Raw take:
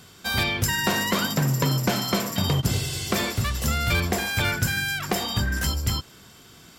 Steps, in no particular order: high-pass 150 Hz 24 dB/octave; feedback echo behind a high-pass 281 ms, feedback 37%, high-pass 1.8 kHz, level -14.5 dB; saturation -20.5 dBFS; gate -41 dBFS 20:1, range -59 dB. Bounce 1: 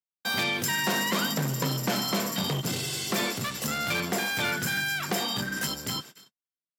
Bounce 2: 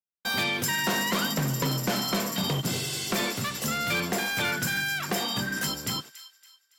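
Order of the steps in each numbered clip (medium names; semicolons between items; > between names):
feedback echo behind a high-pass > saturation > gate > high-pass; high-pass > saturation > gate > feedback echo behind a high-pass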